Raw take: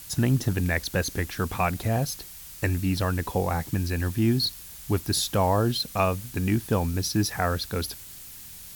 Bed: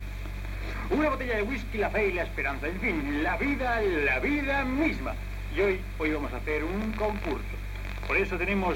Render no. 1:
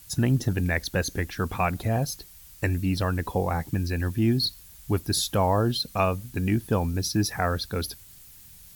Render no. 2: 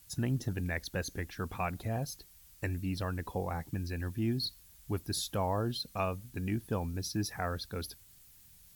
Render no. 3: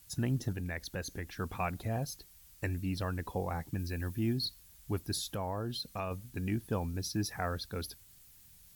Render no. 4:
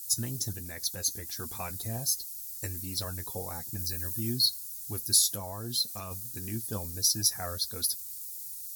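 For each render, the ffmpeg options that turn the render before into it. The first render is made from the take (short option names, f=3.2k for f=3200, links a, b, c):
-af "afftdn=nr=8:nf=-43"
-af "volume=-9.5dB"
-filter_complex "[0:a]asettb=1/sr,asplit=3[a][b][c];[a]atrim=end=0.524[d];[b]atrim=start=0.52:end=1.39,asetpts=PTS-STARTPTS,afade=t=in:d=0.004:c=qsin,afade=t=out:st=0.866:d=0.004:c=qsin,acompressor=threshold=-39dB:ratio=1.5:attack=3.2:release=140:knee=1:detection=peak[e];[c]atrim=start=1.386[f];[d][e]acrossfade=d=0.004:c1=hsin:c2=qsin[g];[g][f]acrossfade=d=0.004:c1=qsin:c2=hsin,asettb=1/sr,asplit=3[h][i][j];[h]atrim=end=3.794[k];[i]atrim=start=3.79:end=4.33,asetpts=PTS-STARTPTS,afade=t=in:d=0.004:c=qsin,afade=t=out:st=0.536:d=0.004:c=qsin,highshelf=f=11k:g=6.5[l];[j]atrim=start=4.326[m];[k][l]acrossfade=d=0.004:c1=hsin:c2=qsin[n];[n][m]acrossfade=d=0.004:c1=qsin:c2=hsin,asettb=1/sr,asplit=3[o][p][q];[o]atrim=end=5.164[r];[p]atrim=start=5.16:end=6.11,asetpts=PTS-STARTPTS,afade=t=in:d=0.004:c=qsin,afade=t=out:st=0.946:d=0.004:c=qsin,acompressor=threshold=-34dB:ratio=2.5:attack=3.2:release=140:knee=1:detection=peak[s];[q]atrim=start=6.106[t];[r][s]acrossfade=d=0.004:c1=hsin:c2=qsin[u];[u][t]acrossfade=d=0.004:c1=qsin:c2=hsin"
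-af "flanger=delay=8.2:depth=1.6:regen=38:speed=1.4:shape=sinusoidal,aexciter=amount=7.6:drive=6.8:freq=4k"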